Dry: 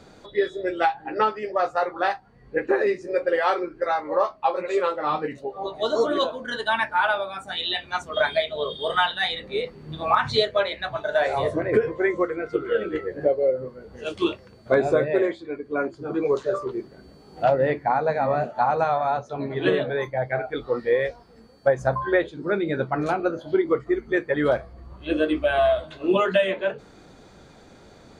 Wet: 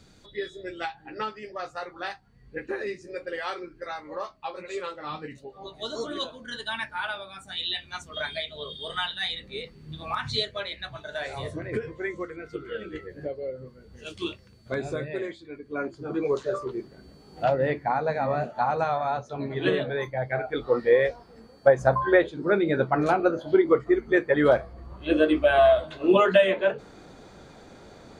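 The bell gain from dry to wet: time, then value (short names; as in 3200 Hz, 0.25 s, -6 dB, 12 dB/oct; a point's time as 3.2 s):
bell 680 Hz 2.9 oct
15.45 s -13.5 dB
15.94 s -4 dB
20.26 s -4 dB
20.7 s +2 dB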